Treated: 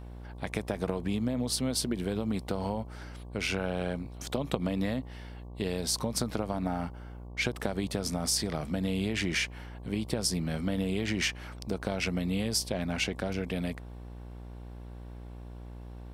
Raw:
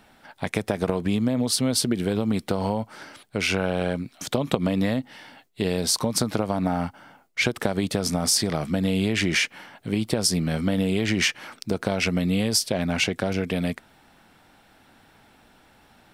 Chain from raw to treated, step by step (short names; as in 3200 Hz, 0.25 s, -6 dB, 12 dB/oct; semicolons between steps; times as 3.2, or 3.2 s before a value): buzz 60 Hz, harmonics 19, -36 dBFS -7 dB/oct; gain -7.5 dB